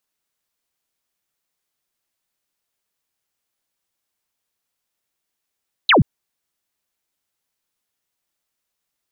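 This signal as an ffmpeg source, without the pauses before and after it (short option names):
-f lavfi -i "aevalsrc='0.355*clip(t/0.002,0,1)*clip((0.13-t)/0.002,0,1)*sin(2*PI*4300*0.13/log(100/4300)*(exp(log(100/4300)*t/0.13)-1))':d=0.13:s=44100"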